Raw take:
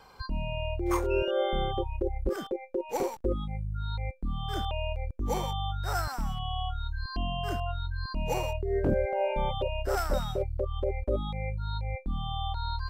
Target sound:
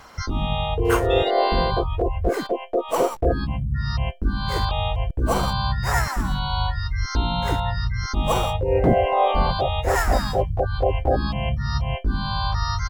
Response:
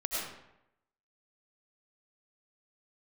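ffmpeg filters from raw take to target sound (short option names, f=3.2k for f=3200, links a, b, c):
-filter_complex "[0:a]acontrast=25,asplit=4[a][b][c][d];[b]asetrate=33038,aresample=44100,atempo=1.33484,volume=-15dB[e];[c]asetrate=55563,aresample=44100,atempo=0.793701,volume=-4dB[f];[d]asetrate=58866,aresample=44100,atempo=0.749154,volume=0dB[g];[a][e][f][g]amix=inputs=4:normalize=0"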